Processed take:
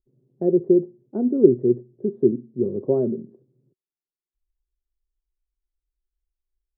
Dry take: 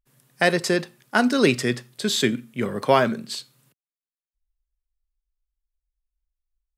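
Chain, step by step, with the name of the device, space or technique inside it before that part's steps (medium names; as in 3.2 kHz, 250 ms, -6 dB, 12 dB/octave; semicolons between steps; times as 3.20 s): under water (low-pass 460 Hz 24 dB/octave; peaking EQ 370 Hz +12 dB 0.35 oct); trim -1.5 dB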